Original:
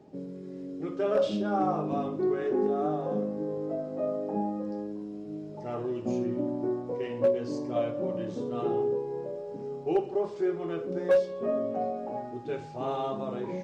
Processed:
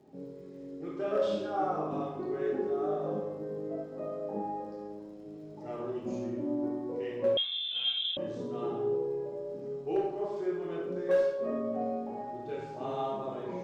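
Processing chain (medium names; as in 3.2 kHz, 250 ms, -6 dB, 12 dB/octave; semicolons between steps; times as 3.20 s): reverberation RT60 0.95 s, pre-delay 18 ms, DRR -2 dB; 7.37–8.17 s: frequency inversion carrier 3.8 kHz; crackle 83 per s -54 dBFS; trim -7 dB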